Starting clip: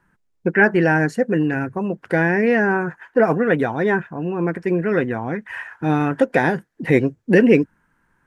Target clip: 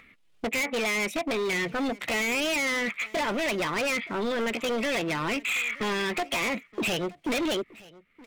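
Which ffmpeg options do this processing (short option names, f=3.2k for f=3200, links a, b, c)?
-af "asetrate=58866,aresample=44100,atempo=0.749154,equalizer=f=3.1k:t=o:w=1.8:g=12,agate=range=-31dB:threshold=-38dB:ratio=16:detection=peak,acompressor=threshold=-27dB:ratio=3,asoftclip=type=hard:threshold=-30.5dB,acompressor=mode=upward:threshold=-39dB:ratio=2.5,aecho=1:1:922:0.0794,volume=5dB"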